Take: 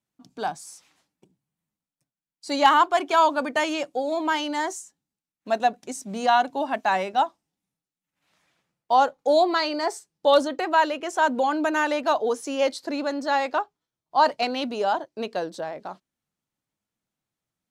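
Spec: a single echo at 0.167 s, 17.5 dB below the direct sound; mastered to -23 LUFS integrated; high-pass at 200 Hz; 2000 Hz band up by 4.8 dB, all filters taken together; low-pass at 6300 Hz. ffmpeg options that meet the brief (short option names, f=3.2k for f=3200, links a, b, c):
-af "highpass=200,lowpass=6.3k,equalizer=f=2k:t=o:g=6.5,aecho=1:1:167:0.133,volume=-0.5dB"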